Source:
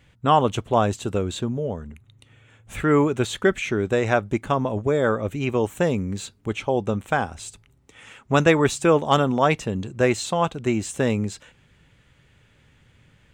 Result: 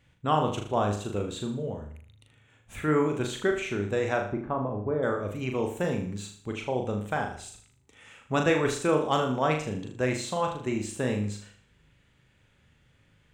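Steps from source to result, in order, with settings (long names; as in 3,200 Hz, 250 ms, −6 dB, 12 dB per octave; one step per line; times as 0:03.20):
0:04.22–0:05.03: Chebyshev low-pass filter 1,100 Hz, order 2
on a send: flutter between parallel walls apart 6.7 metres, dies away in 0.5 s
on the sum: level −8 dB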